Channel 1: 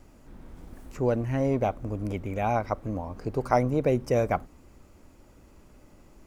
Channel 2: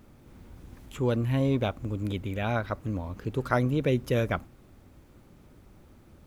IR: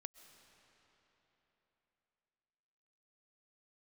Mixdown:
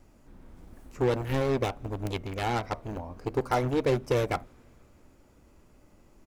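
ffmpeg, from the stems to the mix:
-filter_complex "[0:a]flanger=delay=8.4:depth=7.1:regen=-72:speed=0.49:shape=triangular,volume=0dB,asplit=2[link_01][link_02];[1:a]acrusher=bits=3:mix=0:aa=0.5,adelay=2.1,volume=2.5dB,asplit=2[link_03][link_04];[link_04]volume=-19.5dB[link_05];[link_02]apad=whole_len=276276[link_06];[link_03][link_06]sidechaincompress=threshold=-33dB:ratio=4:attack=16:release=515[link_07];[2:a]atrim=start_sample=2205[link_08];[link_05][link_08]afir=irnorm=-1:irlink=0[link_09];[link_01][link_07][link_09]amix=inputs=3:normalize=0"

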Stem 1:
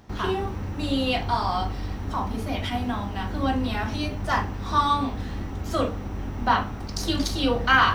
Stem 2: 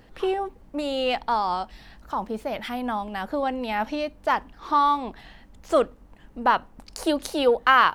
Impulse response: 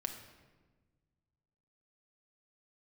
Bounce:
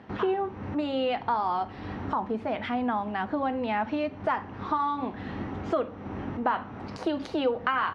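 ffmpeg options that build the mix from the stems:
-filter_complex "[0:a]volume=2.5dB[link_01];[1:a]bandreject=frequency=570:width=12,acompressor=threshold=-25dB:ratio=6,adelay=0.3,volume=1.5dB,asplit=2[link_02][link_03];[link_03]apad=whole_len=350431[link_04];[link_01][link_04]sidechaincompress=threshold=-38dB:ratio=10:attack=5.1:release=277[link_05];[link_05][link_02]amix=inputs=2:normalize=0,highpass=140,lowpass=2400"

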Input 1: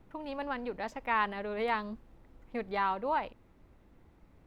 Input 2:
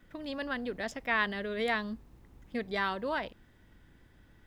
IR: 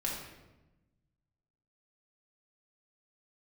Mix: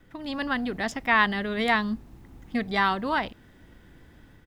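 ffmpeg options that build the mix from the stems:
-filter_complex "[0:a]tiltshelf=frequency=970:gain=10,volume=-7.5dB[link_01];[1:a]adelay=0.8,volume=2.5dB[link_02];[link_01][link_02]amix=inputs=2:normalize=0,lowshelf=frequency=87:gain=-5.5,dynaudnorm=framelen=180:gausssize=3:maxgain=5dB"

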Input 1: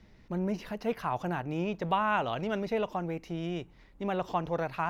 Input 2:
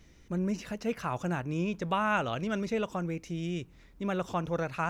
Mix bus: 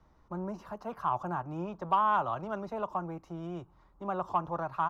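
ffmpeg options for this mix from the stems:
ffmpeg -i stem1.wav -i stem2.wav -filter_complex "[0:a]highpass=570,highshelf=frequency=1600:width_type=q:width=3:gain=-11,volume=-1dB[link_01];[1:a]tiltshelf=frequency=740:gain=7.5,adelay=4.1,volume=-13.5dB[link_02];[link_01][link_02]amix=inputs=2:normalize=0,equalizer=frequency=550:width=1.5:gain=-2,asoftclip=type=tanh:threshold=-14.5dB" out.wav

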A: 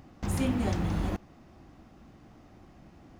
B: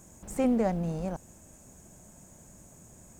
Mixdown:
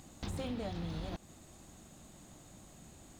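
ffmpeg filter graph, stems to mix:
ffmpeg -i stem1.wav -i stem2.wav -filter_complex "[0:a]equalizer=frequency=3900:width=1.5:gain=14,deesser=1,volume=-5.5dB[link_01];[1:a]volume=-1,volume=-5.5dB[link_02];[link_01][link_02]amix=inputs=2:normalize=0,acompressor=threshold=-36dB:ratio=6" out.wav

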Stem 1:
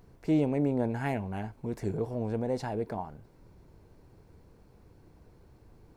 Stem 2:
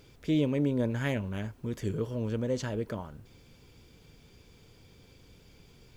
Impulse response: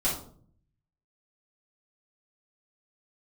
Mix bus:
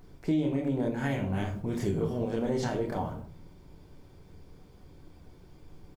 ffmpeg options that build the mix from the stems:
-filter_complex "[0:a]volume=1dB,asplit=2[link_01][link_02];[link_02]volume=-16.5dB[link_03];[1:a]agate=range=-11dB:threshold=-45dB:ratio=16:detection=peak,volume=-1,adelay=27,volume=-2.5dB,asplit=2[link_04][link_05];[link_05]volume=-7.5dB[link_06];[2:a]atrim=start_sample=2205[link_07];[link_03][link_06]amix=inputs=2:normalize=0[link_08];[link_08][link_07]afir=irnorm=-1:irlink=0[link_09];[link_01][link_04][link_09]amix=inputs=3:normalize=0,alimiter=limit=-19.5dB:level=0:latency=1:release=371"

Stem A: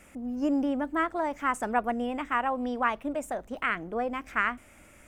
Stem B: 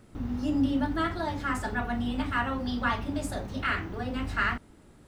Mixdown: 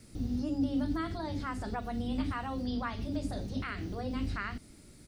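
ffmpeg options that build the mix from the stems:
ffmpeg -i stem1.wav -i stem2.wav -filter_complex "[0:a]volume=-11.5dB,asplit=2[link_01][link_02];[1:a]firequalizer=gain_entry='entry(270,0);entry(1000,-17);entry(4600,13);entry(8100,8)':delay=0.05:min_phase=1,adelay=1.4,volume=0dB[link_03];[link_02]apad=whole_len=228389[link_04];[link_03][link_04]sidechaincompress=threshold=-40dB:ratio=8:attack=5.9:release=170[link_05];[link_01][link_05]amix=inputs=2:normalize=0,acrossover=split=3000[link_06][link_07];[link_07]acompressor=threshold=-59dB:ratio=4:attack=1:release=60[link_08];[link_06][link_08]amix=inputs=2:normalize=0,equalizer=frequency=9300:width=7.1:gain=6.5" out.wav

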